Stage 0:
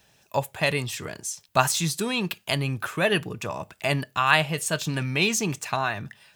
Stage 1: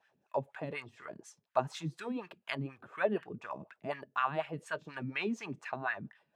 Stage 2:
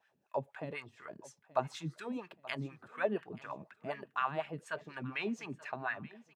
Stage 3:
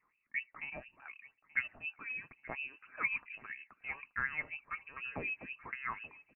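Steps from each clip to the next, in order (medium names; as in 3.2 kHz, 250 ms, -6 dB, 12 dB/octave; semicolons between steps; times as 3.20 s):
wah-wah 4.1 Hz 200–1800 Hz, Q 2.6; trim -2 dB
feedback delay 879 ms, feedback 35%, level -20 dB; trim -2 dB
frequency inversion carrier 2.8 kHz; trim -2.5 dB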